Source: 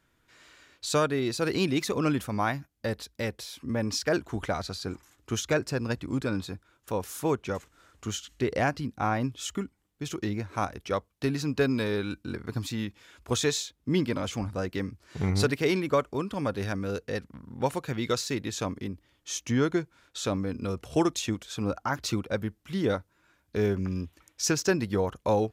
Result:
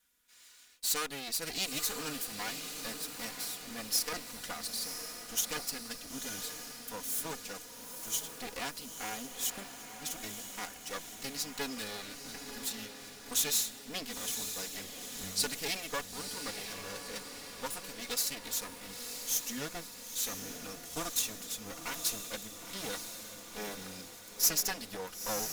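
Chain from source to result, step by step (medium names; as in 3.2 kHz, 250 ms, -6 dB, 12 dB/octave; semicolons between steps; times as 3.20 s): comb filter that takes the minimum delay 4.1 ms; pre-emphasis filter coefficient 0.9; echo that smears into a reverb 955 ms, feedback 57%, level -7 dB; trim +5.5 dB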